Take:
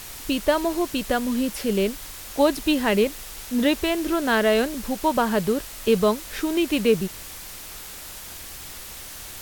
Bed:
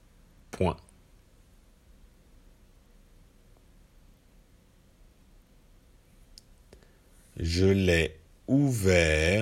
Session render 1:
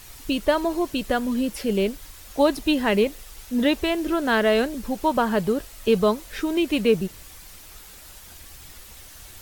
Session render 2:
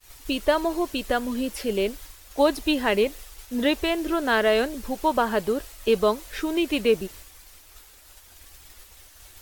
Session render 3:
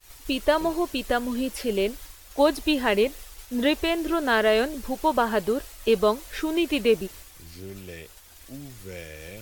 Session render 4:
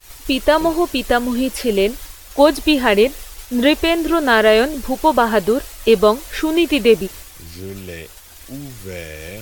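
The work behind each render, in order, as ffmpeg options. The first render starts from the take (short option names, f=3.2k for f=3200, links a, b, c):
-af "afftdn=nr=8:nf=-39"
-af "agate=range=-33dB:threshold=-38dB:ratio=3:detection=peak,equalizer=f=160:w=1.5:g=-11"
-filter_complex "[1:a]volume=-17dB[a];[0:a][a]amix=inputs=2:normalize=0"
-af "volume=8.5dB,alimiter=limit=-1dB:level=0:latency=1"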